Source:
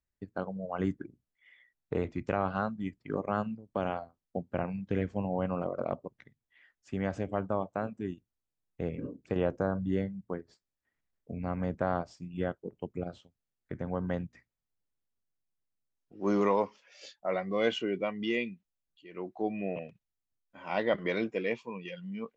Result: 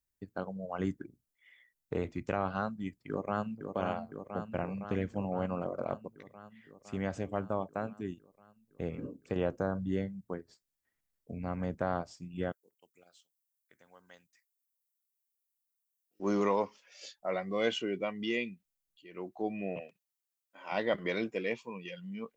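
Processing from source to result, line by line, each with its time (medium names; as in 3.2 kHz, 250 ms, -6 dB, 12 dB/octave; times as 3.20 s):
3.09–3.75 s: echo throw 510 ms, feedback 75%, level -6 dB
12.52–16.20 s: differentiator
19.80–20.72 s: high-pass 360 Hz
whole clip: treble shelf 6 kHz +11.5 dB; trim -2.5 dB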